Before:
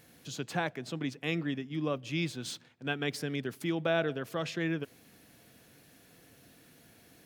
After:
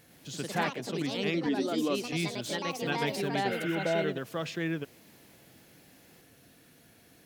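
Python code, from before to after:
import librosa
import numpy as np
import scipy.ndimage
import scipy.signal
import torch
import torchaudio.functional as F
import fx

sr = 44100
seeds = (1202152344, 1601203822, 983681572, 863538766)

y = fx.echo_pitch(x, sr, ms=109, semitones=3, count=3, db_per_echo=-3.0)
y = fx.low_shelf_res(y, sr, hz=200.0, db=-6.5, q=3.0, at=(1.46, 2.13))
y = fx.spec_repair(y, sr, seeds[0], start_s=3.5, length_s=0.49, low_hz=1100.0, high_hz=3600.0, source='after')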